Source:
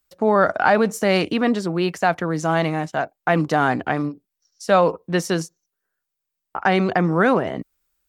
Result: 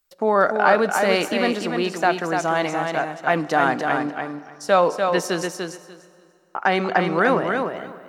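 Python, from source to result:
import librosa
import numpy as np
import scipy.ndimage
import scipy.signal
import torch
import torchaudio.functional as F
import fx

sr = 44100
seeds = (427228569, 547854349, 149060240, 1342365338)

p1 = fx.peak_eq(x, sr, hz=93.0, db=-14.5, octaves=1.9)
p2 = p1 + fx.echo_feedback(p1, sr, ms=294, feedback_pct=16, wet_db=-5.0, dry=0)
y = fx.rev_plate(p2, sr, seeds[0], rt60_s=2.6, hf_ratio=0.8, predelay_ms=0, drr_db=16.5)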